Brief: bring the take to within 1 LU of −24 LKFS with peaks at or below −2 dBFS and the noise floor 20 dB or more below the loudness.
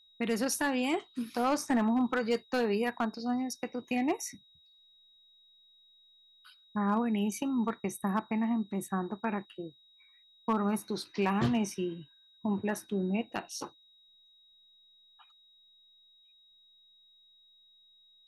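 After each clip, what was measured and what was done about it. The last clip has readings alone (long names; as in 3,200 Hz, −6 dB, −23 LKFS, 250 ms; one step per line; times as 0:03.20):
share of clipped samples 0.2%; peaks flattened at −21.0 dBFS; interfering tone 3,800 Hz; level of the tone −60 dBFS; integrated loudness −32.0 LKFS; sample peak −21.0 dBFS; target loudness −24.0 LKFS
→ clipped peaks rebuilt −21 dBFS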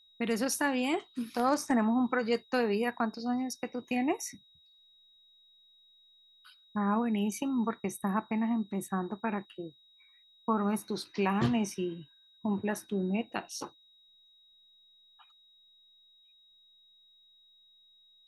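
share of clipped samples 0.0%; interfering tone 3,800 Hz; level of the tone −60 dBFS
→ notch filter 3,800 Hz, Q 30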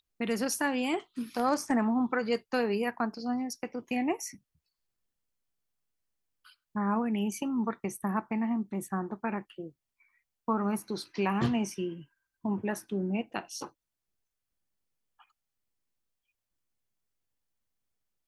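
interfering tone none found; integrated loudness −32.0 LKFS; sample peak −15.0 dBFS; target loudness −24.0 LKFS
→ level +8 dB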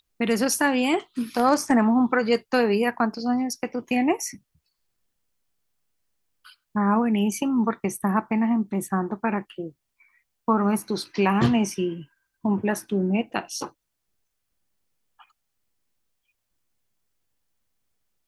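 integrated loudness −24.0 LKFS; sample peak −7.0 dBFS; background noise floor −79 dBFS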